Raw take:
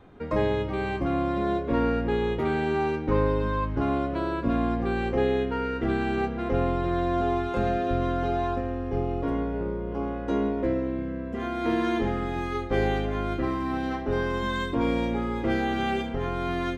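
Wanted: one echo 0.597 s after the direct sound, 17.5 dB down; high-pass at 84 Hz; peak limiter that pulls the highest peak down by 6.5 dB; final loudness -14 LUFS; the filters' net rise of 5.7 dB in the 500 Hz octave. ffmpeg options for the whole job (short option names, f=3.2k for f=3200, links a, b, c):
-af "highpass=84,equalizer=f=500:t=o:g=7.5,alimiter=limit=-15dB:level=0:latency=1,aecho=1:1:597:0.133,volume=11dB"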